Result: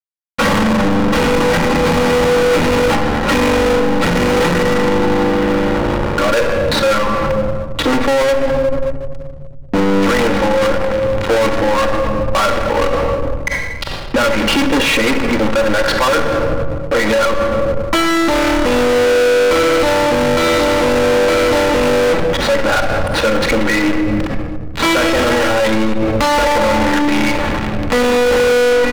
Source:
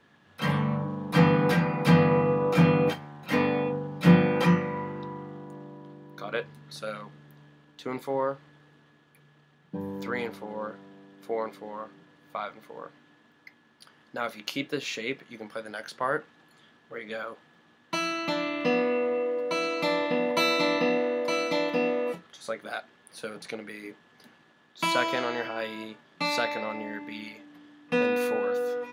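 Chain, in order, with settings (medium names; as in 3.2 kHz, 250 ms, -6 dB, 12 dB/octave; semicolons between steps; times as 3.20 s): comb 3.6 ms, depth 93%; fuzz box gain 40 dB, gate -42 dBFS; low-pass 2.2 kHz 12 dB/octave; waveshaping leveller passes 3; bass shelf 92 Hz +9 dB; hum notches 60/120/180 Hz; reverberation RT60 1.3 s, pre-delay 15 ms, DRR 11.5 dB; power-law waveshaper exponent 0.7; loudness maximiser +19.5 dB; trim -8 dB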